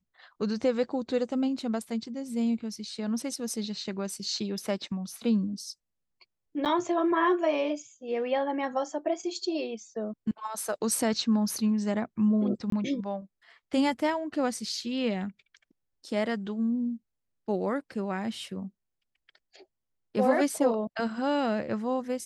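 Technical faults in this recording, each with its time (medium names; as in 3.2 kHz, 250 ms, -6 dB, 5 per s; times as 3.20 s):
6.65–6.66 s: dropout 8.4 ms
12.70–12.72 s: dropout 23 ms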